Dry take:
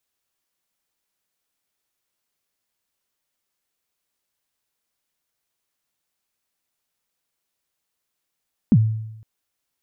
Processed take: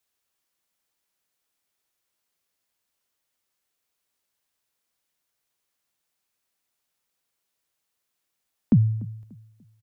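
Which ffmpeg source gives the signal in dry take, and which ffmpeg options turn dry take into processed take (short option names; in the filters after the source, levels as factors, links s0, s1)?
-f lavfi -i "aevalsrc='0.398*pow(10,-3*t/0.89)*sin(2*PI*(260*0.052/log(110/260)*(exp(log(110/260)*min(t,0.052)/0.052)-1)+110*max(t-0.052,0)))':d=0.51:s=44100"
-filter_complex "[0:a]lowshelf=f=98:g=-10.5,acrossover=split=100|350[s0][s1][s2];[s0]acontrast=69[s3];[s3][s1][s2]amix=inputs=3:normalize=0,asplit=2[s4][s5];[s5]adelay=293,lowpass=f=2000:p=1,volume=0.0891,asplit=2[s6][s7];[s7]adelay=293,lowpass=f=2000:p=1,volume=0.35,asplit=2[s8][s9];[s9]adelay=293,lowpass=f=2000:p=1,volume=0.35[s10];[s4][s6][s8][s10]amix=inputs=4:normalize=0"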